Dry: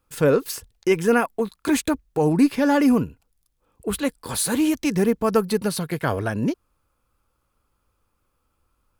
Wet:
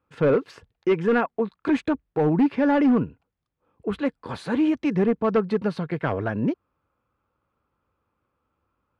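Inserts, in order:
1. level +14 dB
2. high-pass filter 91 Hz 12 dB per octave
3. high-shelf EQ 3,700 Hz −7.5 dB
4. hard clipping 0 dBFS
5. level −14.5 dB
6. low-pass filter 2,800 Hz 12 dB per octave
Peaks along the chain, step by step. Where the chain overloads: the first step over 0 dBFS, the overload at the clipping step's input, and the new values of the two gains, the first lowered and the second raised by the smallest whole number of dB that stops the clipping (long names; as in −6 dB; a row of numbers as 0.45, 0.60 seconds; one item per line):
+7.0, +6.5, +6.0, 0.0, −14.5, −14.0 dBFS
step 1, 6.0 dB
step 1 +8 dB, step 5 −8.5 dB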